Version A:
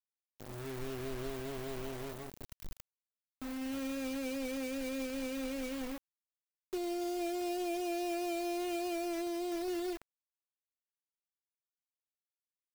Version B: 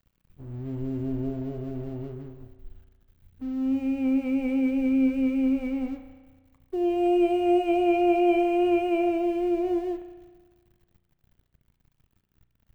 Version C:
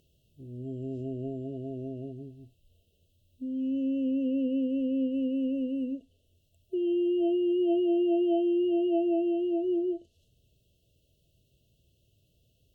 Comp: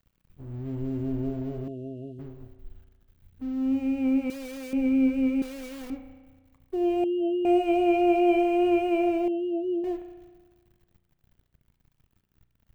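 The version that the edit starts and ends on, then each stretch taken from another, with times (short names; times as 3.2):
B
1.68–2.19 from C
4.3–4.73 from A
5.42–5.9 from A
7.04–7.45 from C
9.28–9.84 from C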